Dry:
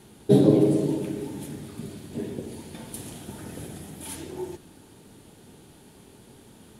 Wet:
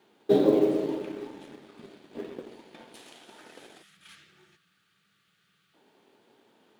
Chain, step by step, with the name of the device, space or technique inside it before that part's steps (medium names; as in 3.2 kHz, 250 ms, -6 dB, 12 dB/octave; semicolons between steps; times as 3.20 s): 2.95–3.97 s: tilt EQ +2.5 dB/octave; 3.83–5.74 s: time-frequency box 200–1100 Hz -21 dB; phone line with mismatched companding (band-pass 380–3600 Hz; companding laws mixed up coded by A); trim +1.5 dB